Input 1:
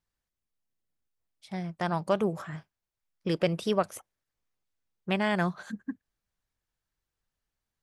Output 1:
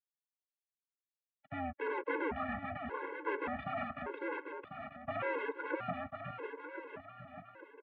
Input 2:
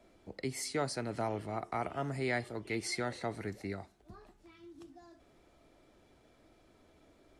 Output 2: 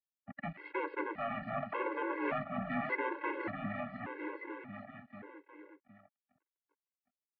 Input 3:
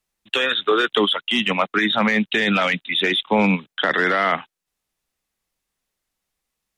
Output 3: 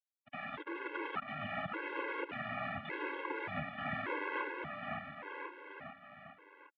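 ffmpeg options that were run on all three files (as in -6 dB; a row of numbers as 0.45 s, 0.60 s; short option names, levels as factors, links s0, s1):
-af "agate=range=0.0224:threshold=0.002:ratio=3:detection=peak,apsyclip=2.51,aresample=11025,aeval=exprs='sgn(val(0))*max(abs(val(0))-0.0119,0)':c=same,aresample=44100,aeval=exprs='(tanh(11.2*val(0)+0.45)-tanh(0.45))/11.2':c=same,aeval=exprs='0.0316*(abs(mod(val(0)/0.0316+3,4)-2)-1)':c=same,highpass=f=270:t=q:w=0.5412,highpass=f=270:t=q:w=1.307,lowpass=f=2400:t=q:w=0.5176,lowpass=f=2400:t=q:w=0.7071,lowpass=f=2400:t=q:w=1.932,afreqshift=-91,aecho=1:1:550|1045|1490|1891|2252:0.631|0.398|0.251|0.158|0.1,afftfilt=real='re*gt(sin(2*PI*0.86*pts/sr)*(1-2*mod(floor(b*sr/1024/280),2)),0)':imag='im*gt(sin(2*PI*0.86*pts/sr)*(1-2*mod(floor(b*sr/1024/280),2)),0)':win_size=1024:overlap=0.75,volume=1.78"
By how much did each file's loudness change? -9.5 LU, -1.0 LU, -21.5 LU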